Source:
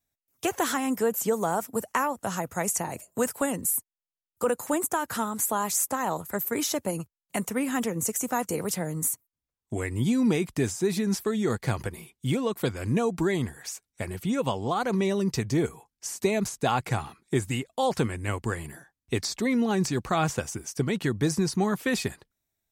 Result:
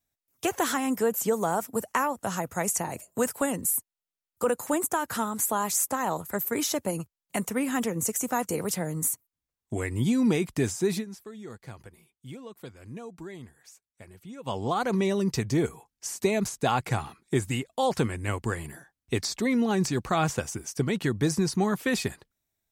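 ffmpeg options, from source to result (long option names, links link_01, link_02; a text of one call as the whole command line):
ffmpeg -i in.wav -filter_complex "[0:a]asplit=3[link_01][link_02][link_03];[link_01]atrim=end=11.05,asetpts=PTS-STARTPTS,afade=type=out:start_time=10.92:duration=0.13:curve=qsin:silence=0.16788[link_04];[link_02]atrim=start=11.05:end=14.45,asetpts=PTS-STARTPTS,volume=-15.5dB[link_05];[link_03]atrim=start=14.45,asetpts=PTS-STARTPTS,afade=type=in:duration=0.13:curve=qsin:silence=0.16788[link_06];[link_04][link_05][link_06]concat=n=3:v=0:a=1" out.wav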